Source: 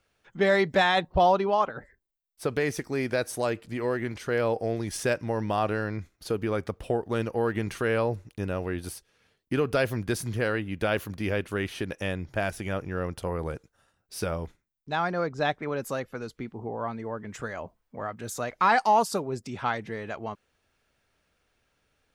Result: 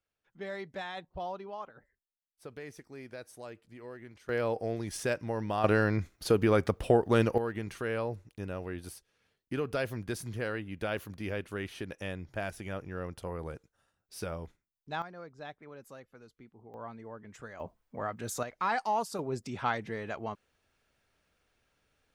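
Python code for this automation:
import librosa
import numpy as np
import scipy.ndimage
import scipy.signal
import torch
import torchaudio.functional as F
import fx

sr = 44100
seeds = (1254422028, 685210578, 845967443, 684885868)

y = fx.gain(x, sr, db=fx.steps((0.0, -17.5), (4.29, -5.0), (5.64, 3.5), (7.38, -7.5), (15.02, -18.0), (16.74, -11.0), (17.6, -1.5), (18.43, -9.0), (19.19, -2.5)))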